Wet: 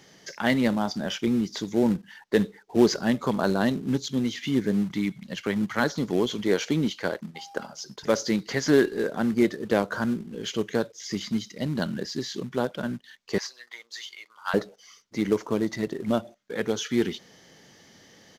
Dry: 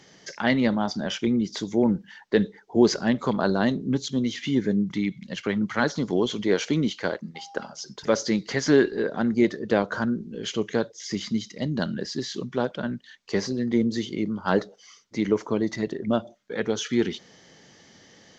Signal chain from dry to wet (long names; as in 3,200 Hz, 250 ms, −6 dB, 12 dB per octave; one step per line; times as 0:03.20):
0:13.38–0:14.54: high-pass filter 1,000 Hz 24 dB per octave
in parallel at −8 dB: log-companded quantiser 4 bits
on the sum: downsampling to 32,000 Hz
level −4 dB